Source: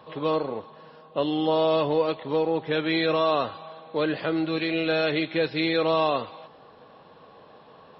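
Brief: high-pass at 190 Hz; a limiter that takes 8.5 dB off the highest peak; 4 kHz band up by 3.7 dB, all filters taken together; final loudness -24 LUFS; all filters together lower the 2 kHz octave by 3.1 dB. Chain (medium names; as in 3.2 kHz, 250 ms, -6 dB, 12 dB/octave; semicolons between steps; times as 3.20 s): high-pass 190 Hz; peaking EQ 2 kHz -6 dB; peaking EQ 4 kHz +6 dB; trim +6 dB; peak limiter -14.5 dBFS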